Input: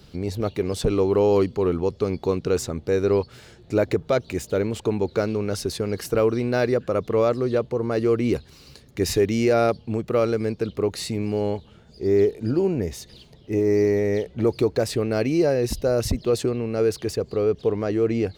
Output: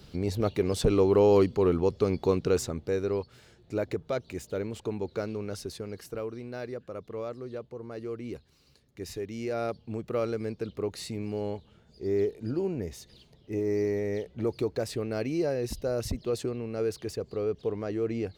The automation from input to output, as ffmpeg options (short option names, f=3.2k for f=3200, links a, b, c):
-af "volume=5.5dB,afade=t=out:st=2.38:d=0.73:silence=0.421697,afade=t=out:st=5.45:d=0.83:silence=0.473151,afade=t=in:st=9.28:d=0.77:silence=0.421697"